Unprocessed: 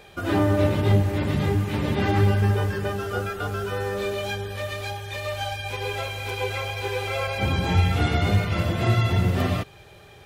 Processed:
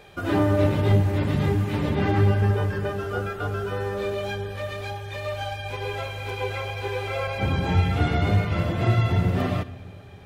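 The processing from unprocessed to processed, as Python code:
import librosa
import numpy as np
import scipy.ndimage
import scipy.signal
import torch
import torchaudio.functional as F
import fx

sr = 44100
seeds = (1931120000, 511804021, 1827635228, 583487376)

y = fx.high_shelf(x, sr, hz=3200.0, db=fx.steps((0.0, -4.0), (1.88, -8.5)))
y = fx.room_shoebox(y, sr, seeds[0], volume_m3=2100.0, walls='mixed', distance_m=0.34)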